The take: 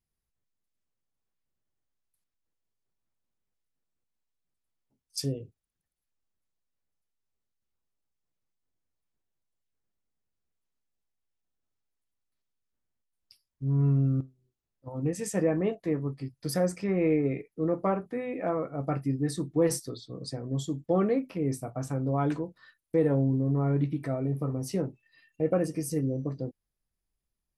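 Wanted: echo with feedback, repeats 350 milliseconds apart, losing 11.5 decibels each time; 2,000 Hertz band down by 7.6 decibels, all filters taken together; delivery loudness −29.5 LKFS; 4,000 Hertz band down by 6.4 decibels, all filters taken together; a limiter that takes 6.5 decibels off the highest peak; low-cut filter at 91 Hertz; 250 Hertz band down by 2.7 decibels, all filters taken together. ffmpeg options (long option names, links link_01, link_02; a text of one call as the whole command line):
ffmpeg -i in.wav -af "highpass=91,equalizer=frequency=250:width_type=o:gain=-3.5,equalizer=frequency=2000:width_type=o:gain=-7.5,equalizer=frequency=4000:width_type=o:gain=-7.5,alimiter=limit=-21.5dB:level=0:latency=1,aecho=1:1:350|700|1050:0.266|0.0718|0.0194,volume=3.5dB" out.wav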